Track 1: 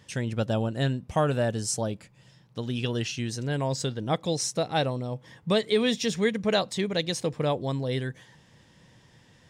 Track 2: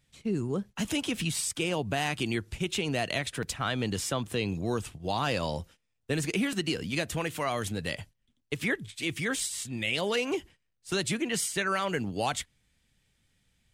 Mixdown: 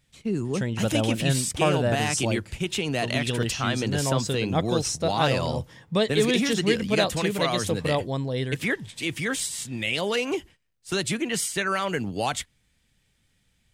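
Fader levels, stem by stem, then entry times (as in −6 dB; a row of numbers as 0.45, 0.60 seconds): +1.0, +3.0 decibels; 0.45, 0.00 seconds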